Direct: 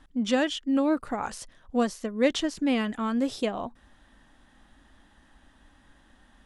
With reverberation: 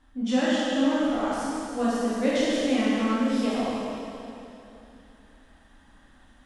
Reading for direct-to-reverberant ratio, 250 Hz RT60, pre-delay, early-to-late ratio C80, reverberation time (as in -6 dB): -9.5 dB, 3.1 s, 16 ms, -2.5 dB, 2.9 s